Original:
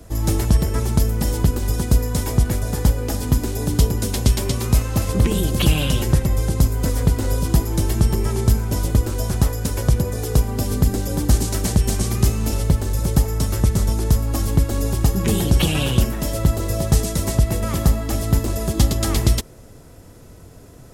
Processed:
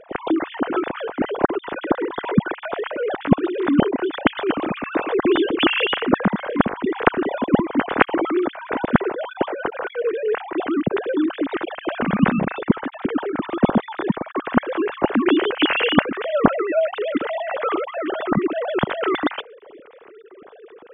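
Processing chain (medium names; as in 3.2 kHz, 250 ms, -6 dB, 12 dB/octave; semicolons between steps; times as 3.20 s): formants replaced by sine waves; dynamic bell 1.5 kHz, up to +4 dB, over -37 dBFS, Q 4.2; trim -3.5 dB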